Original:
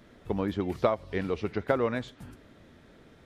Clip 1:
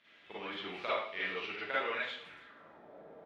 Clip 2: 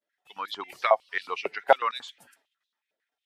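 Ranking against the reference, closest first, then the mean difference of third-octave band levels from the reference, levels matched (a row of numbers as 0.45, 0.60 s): 1, 2; 9.0, 12.5 dB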